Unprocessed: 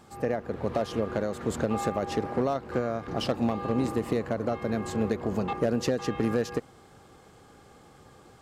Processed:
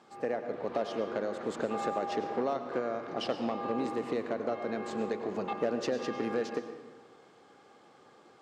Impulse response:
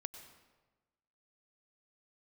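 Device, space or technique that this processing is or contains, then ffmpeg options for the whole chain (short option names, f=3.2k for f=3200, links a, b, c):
supermarket ceiling speaker: -filter_complex "[0:a]highpass=270,lowpass=5.5k[a];[1:a]atrim=start_sample=2205[b];[a][b]afir=irnorm=-1:irlink=0"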